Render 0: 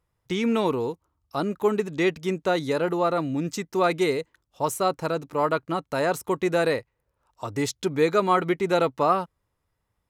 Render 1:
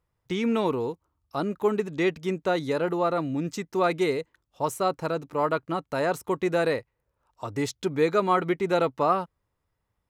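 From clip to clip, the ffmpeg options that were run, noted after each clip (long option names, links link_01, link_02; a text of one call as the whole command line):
ffmpeg -i in.wav -af "equalizer=frequency=12000:width_type=o:width=2.3:gain=-4,volume=-1.5dB" out.wav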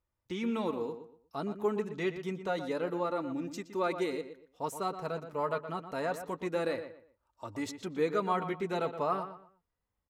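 ffmpeg -i in.wav -filter_complex "[0:a]flanger=delay=3.3:depth=1.4:regen=-37:speed=0.28:shape=sinusoidal,asplit=2[link_01][link_02];[link_02]adelay=120,lowpass=frequency=3100:poles=1,volume=-10dB,asplit=2[link_03][link_04];[link_04]adelay=120,lowpass=frequency=3100:poles=1,volume=0.28,asplit=2[link_05][link_06];[link_06]adelay=120,lowpass=frequency=3100:poles=1,volume=0.28[link_07];[link_03][link_05][link_07]amix=inputs=3:normalize=0[link_08];[link_01][link_08]amix=inputs=2:normalize=0,volume=-4.5dB" out.wav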